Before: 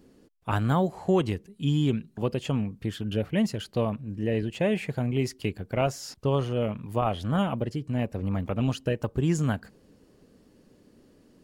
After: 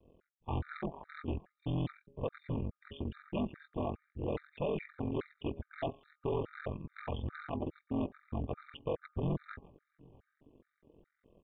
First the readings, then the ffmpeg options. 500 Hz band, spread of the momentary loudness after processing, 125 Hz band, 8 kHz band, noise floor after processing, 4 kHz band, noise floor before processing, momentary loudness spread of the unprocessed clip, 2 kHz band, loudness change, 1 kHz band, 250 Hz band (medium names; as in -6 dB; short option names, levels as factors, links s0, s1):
-10.0 dB, 6 LU, -12.0 dB, under -35 dB, -85 dBFS, -15.0 dB, -60 dBFS, 6 LU, -11.5 dB, -11.0 dB, -11.0 dB, -12.0 dB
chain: -filter_complex "[0:a]asplit=2[s0][s1];[s1]adelay=12,volume=0.447[s2];[s0][s2]amix=inputs=2:normalize=0,adynamicequalizer=threshold=0.0126:dfrequency=180:dqfactor=1.1:tfrequency=180:tqfactor=1.1:attack=5:release=100:ratio=0.375:range=2:mode=boostabove:tftype=bell,aeval=exprs='val(0)*sin(2*PI*22*n/s)':c=same,flanger=delay=1.9:depth=1.3:regen=15:speed=0.44:shape=sinusoidal,bandreject=f=411.8:t=h:w=4,bandreject=f=823.6:t=h:w=4,bandreject=f=1235.4:t=h:w=4,asplit=2[s3][s4];[s4]asoftclip=type=tanh:threshold=0.0211,volume=0.335[s5];[s3][s5]amix=inputs=2:normalize=0,highshelf=f=3100:g=-11.5,tremolo=f=150:d=0.889,aresample=8000,asoftclip=type=hard:threshold=0.0266,aresample=44100,asplit=2[s6][s7];[s7]adelay=641.4,volume=0.0447,highshelf=f=4000:g=-14.4[s8];[s6][s8]amix=inputs=2:normalize=0,afftfilt=real='re*gt(sin(2*PI*2.4*pts/sr)*(1-2*mod(floor(b*sr/1024/1200),2)),0)':imag='im*gt(sin(2*PI*2.4*pts/sr)*(1-2*mod(floor(b*sr/1024/1200),2)),0)':win_size=1024:overlap=0.75,volume=1.41"